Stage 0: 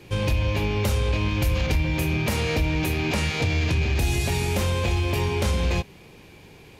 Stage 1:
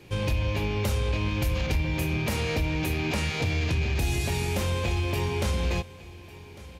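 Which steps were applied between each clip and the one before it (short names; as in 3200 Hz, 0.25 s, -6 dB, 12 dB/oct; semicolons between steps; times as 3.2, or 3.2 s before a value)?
echo 1.151 s -19 dB; gain -3.5 dB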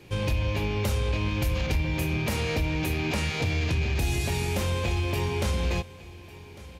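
nothing audible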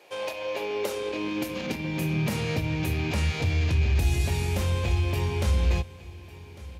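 high-pass sweep 620 Hz -> 62 Hz, 0.3–3.51; gain -2 dB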